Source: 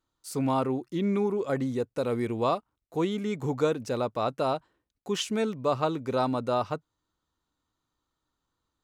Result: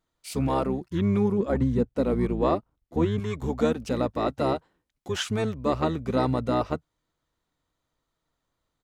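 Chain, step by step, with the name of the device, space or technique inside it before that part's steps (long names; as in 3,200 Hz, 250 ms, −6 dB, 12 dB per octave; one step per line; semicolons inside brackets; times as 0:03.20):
0:01.38–0:03.20: spectral tilt −2 dB per octave
octave pedal (pitch-shifted copies added −12 semitones −2 dB)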